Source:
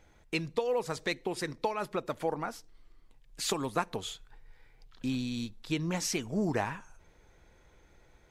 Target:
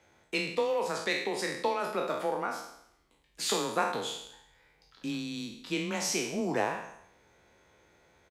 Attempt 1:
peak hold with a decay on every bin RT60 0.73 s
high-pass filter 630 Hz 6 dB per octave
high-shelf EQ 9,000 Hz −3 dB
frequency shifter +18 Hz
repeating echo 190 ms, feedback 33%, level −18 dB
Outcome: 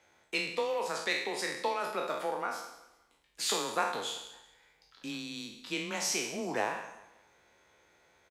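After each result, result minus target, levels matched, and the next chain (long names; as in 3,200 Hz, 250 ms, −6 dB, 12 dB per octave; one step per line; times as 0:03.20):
echo-to-direct +11.5 dB; 250 Hz band −4.0 dB
peak hold with a decay on every bin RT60 0.73 s
high-pass filter 630 Hz 6 dB per octave
high-shelf EQ 9,000 Hz −3 dB
frequency shifter +18 Hz
repeating echo 190 ms, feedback 33%, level −29.5 dB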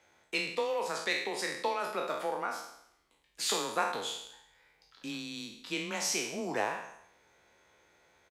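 250 Hz band −4.0 dB
peak hold with a decay on every bin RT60 0.73 s
high-pass filter 230 Hz 6 dB per octave
high-shelf EQ 9,000 Hz −3 dB
frequency shifter +18 Hz
repeating echo 190 ms, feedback 33%, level −29.5 dB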